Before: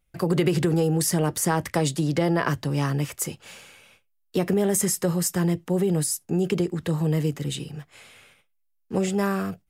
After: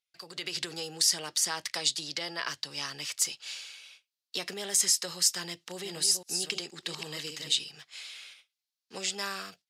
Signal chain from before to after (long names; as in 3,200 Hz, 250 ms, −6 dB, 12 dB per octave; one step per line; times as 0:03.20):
0:05.43–0:07.52: delay that plays each chunk backwards 267 ms, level −6.5 dB
automatic gain control gain up to 15 dB
resonant band-pass 4,500 Hz, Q 2.1